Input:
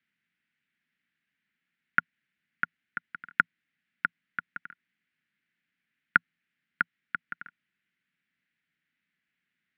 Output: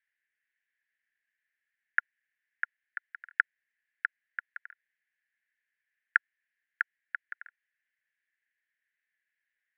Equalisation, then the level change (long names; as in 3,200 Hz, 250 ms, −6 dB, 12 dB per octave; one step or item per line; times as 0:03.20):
four-pole ladder high-pass 1,600 Hz, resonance 75%
0.0 dB